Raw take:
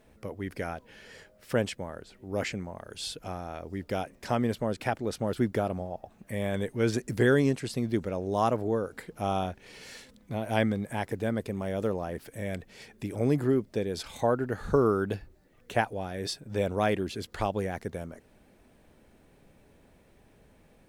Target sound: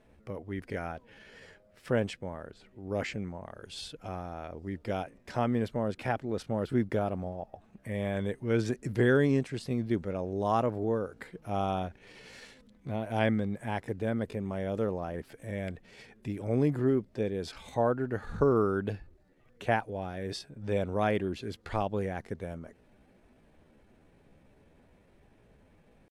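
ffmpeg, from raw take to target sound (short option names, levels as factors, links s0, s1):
-af "lowpass=12000,bass=f=250:g=1,treble=f=4000:g=-6,atempo=0.8,volume=0.794"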